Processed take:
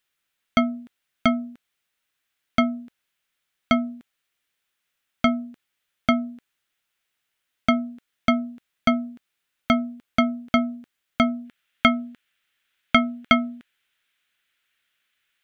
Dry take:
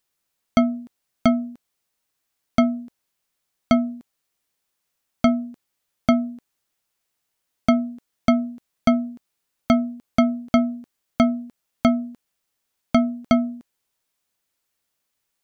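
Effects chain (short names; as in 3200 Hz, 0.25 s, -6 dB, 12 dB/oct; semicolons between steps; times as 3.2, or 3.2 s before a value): band shelf 2200 Hz +8.5 dB, from 11.44 s +15.5 dB; gain -3.5 dB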